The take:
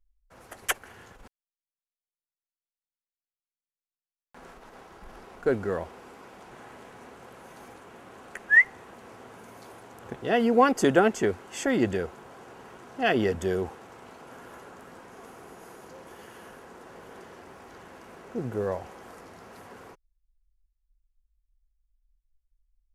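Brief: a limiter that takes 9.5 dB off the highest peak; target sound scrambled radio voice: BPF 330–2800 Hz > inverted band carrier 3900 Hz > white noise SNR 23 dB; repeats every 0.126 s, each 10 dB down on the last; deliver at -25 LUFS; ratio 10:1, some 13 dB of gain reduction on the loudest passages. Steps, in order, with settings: compressor 10:1, threshold -26 dBFS; limiter -23.5 dBFS; BPF 330–2800 Hz; feedback echo 0.126 s, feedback 32%, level -10 dB; inverted band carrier 3900 Hz; white noise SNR 23 dB; gain +12.5 dB

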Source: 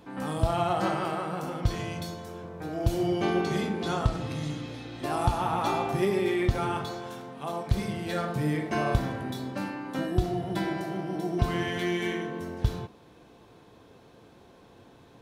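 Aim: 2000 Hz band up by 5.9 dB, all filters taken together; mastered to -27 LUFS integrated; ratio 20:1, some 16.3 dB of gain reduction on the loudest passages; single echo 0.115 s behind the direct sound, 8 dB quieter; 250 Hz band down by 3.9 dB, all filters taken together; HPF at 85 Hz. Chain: HPF 85 Hz; bell 250 Hz -6.5 dB; bell 2000 Hz +7.5 dB; compressor 20:1, threshold -38 dBFS; echo 0.115 s -8 dB; gain +14.5 dB

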